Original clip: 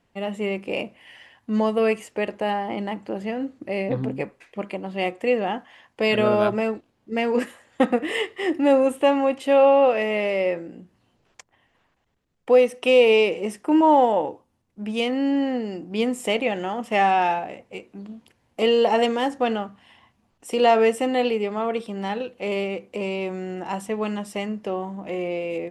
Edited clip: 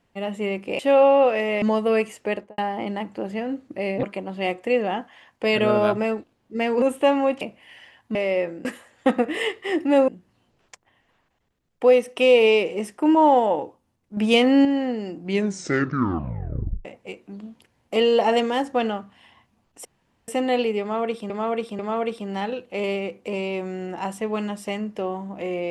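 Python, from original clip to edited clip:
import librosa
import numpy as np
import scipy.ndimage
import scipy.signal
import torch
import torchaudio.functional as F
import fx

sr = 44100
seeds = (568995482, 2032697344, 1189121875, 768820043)

y = fx.studio_fade_out(x, sr, start_s=2.23, length_s=0.26)
y = fx.edit(y, sr, fx.swap(start_s=0.79, length_s=0.74, other_s=9.41, other_length_s=0.83),
    fx.cut(start_s=3.94, length_s=0.66),
    fx.move(start_s=7.39, length_s=1.43, to_s=10.74),
    fx.clip_gain(start_s=14.83, length_s=0.48, db=7.0),
    fx.tape_stop(start_s=15.83, length_s=1.68),
    fx.room_tone_fill(start_s=20.51, length_s=0.43),
    fx.repeat(start_s=21.47, length_s=0.49, count=3), tone=tone)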